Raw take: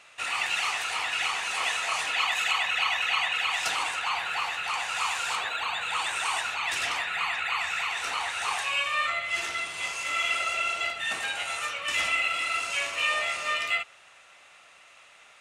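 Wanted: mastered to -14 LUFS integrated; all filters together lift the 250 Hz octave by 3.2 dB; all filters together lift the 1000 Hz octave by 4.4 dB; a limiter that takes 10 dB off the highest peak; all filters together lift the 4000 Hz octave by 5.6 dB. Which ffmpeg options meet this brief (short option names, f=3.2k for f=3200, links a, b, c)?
-af "equalizer=f=250:t=o:g=4,equalizer=f=1k:t=o:g=5,equalizer=f=4k:t=o:g=7.5,volume=12.5dB,alimiter=limit=-6.5dB:level=0:latency=1"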